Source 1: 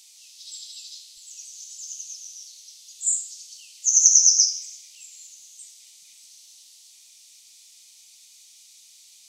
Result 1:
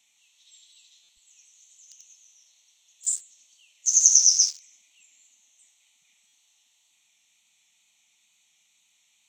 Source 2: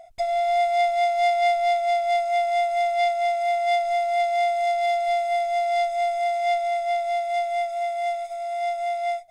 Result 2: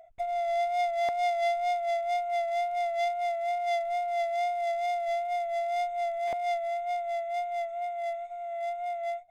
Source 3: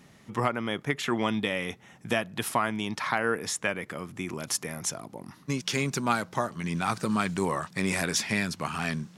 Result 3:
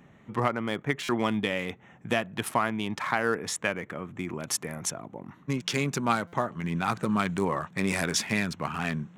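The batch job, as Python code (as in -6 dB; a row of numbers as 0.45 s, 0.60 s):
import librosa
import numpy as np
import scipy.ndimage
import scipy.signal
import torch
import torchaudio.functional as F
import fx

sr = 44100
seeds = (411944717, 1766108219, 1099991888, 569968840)

y = fx.wiener(x, sr, points=9)
y = fx.wow_flutter(y, sr, seeds[0], rate_hz=2.1, depth_cents=29.0)
y = fx.buffer_glitch(y, sr, at_s=(1.03, 6.27), block=256, repeats=9)
y = y * 10.0 ** (-30 / 20.0) / np.sqrt(np.mean(np.square(y)))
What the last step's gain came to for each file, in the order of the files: -1.5 dB, -7.0 dB, +1.0 dB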